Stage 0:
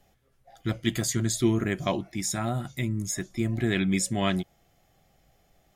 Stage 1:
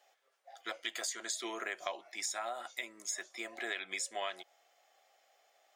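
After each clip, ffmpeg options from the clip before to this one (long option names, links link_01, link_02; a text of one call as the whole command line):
ffmpeg -i in.wav -af "highpass=frequency=560:width=0.5412,highpass=frequency=560:width=1.3066,equalizer=frequency=12000:width=2:gain=-15,acompressor=threshold=-34dB:ratio=12" out.wav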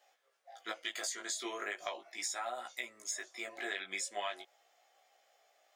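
ffmpeg -i in.wav -af "flanger=delay=16:depth=4.3:speed=0.39,volume=2.5dB" out.wav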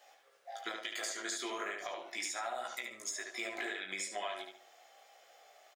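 ffmpeg -i in.wav -filter_complex "[0:a]alimiter=level_in=7dB:limit=-24dB:level=0:latency=1:release=396,volume=-7dB,acompressor=threshold=-44dB:ratio=6,asplit=2[link_01][link_02];[link_02]adelay=73,lowpass=frequency=4500:poles=1,volume=-4dB,asplit=2[link_03][link_04];[link_04]adelay=73,lowpass=frequency=4500:poles=1,volume=0.34,asplit=2[link_05][link_06];[link_06]adelay=73,lowpass=frequency=4500:poles=1,volume=0.34,asplit=2[link_07][link_08];[link_08]adelay=73,lowpass=frequency=4500:poles=1,volume=0.34[link_09];[link_01][link_03][link_05][link_07][link_09]amix=inputs=5:normalize=0,volume=7.5dB" out.wav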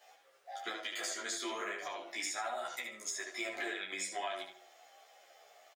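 ffmpeg -i in.wav -filter_complex "[0:a]asplit=2[link_01][link_02];[link_02]adelay=11.1,afreqshift=-3[link_03];[link_01][link_03]amix=inputs=2:normalize=1,volume=3.5dB" out.wav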